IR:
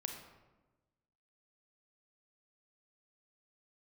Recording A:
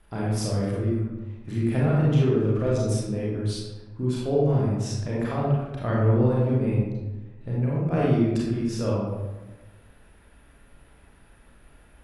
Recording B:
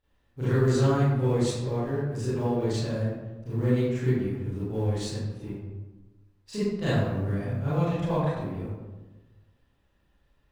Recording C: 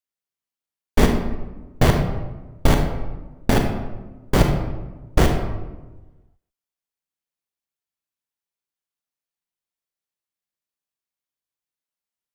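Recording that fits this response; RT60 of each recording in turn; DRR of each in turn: C; 1.2, 1.2, 1.2 s; -6.0, -13.0, 3.0 dB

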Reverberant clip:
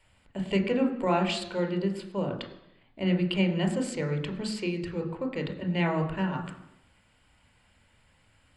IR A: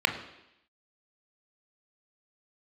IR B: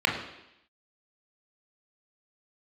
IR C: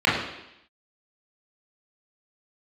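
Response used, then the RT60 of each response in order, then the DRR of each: A; 0.85, 0.85, 0.85 s; 5.0, -1.0, -9.0 dB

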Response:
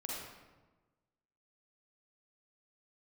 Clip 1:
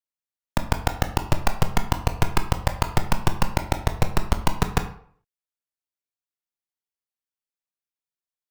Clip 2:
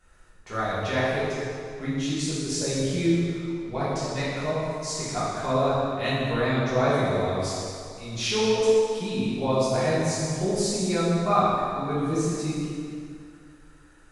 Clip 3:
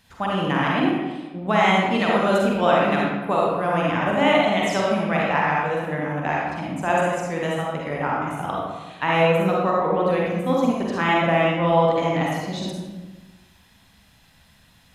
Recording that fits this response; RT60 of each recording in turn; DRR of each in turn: 3; 0.55, 2.4, 1.2 s; 7.0, -11.0, -4.5 dB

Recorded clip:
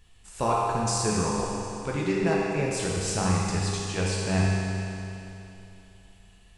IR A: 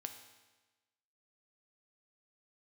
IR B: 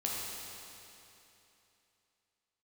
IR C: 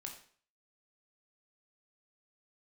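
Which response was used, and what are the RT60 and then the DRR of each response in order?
B; 1.2, 3.0, 0.50 s; 5.0, -4.5, 1.5 dB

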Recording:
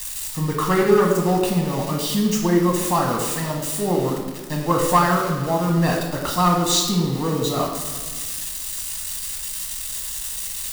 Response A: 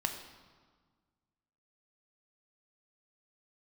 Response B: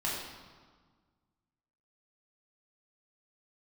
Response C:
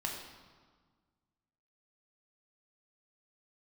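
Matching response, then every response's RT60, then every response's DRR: C; 1.5, 1.5, 1.5 s; 5.5, -5.0, 0.5 dB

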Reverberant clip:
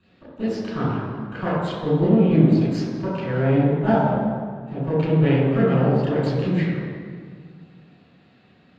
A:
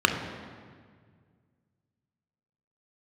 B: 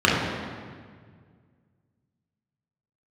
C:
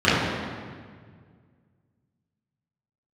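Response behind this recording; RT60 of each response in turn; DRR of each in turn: C; 1.8, 1.8, 1.8 s; 4.0, -5.5, -13.0 dB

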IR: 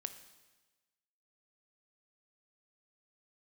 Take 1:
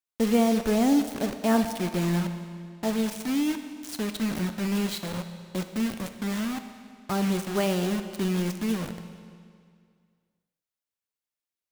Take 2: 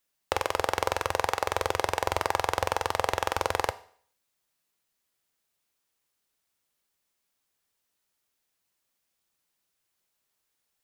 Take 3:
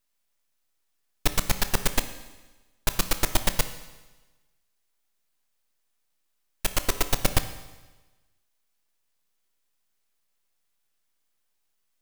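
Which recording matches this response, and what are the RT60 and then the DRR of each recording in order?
3; 2.2, 0.55, 1.2 s; 7.5, 12.5, 9.5 dB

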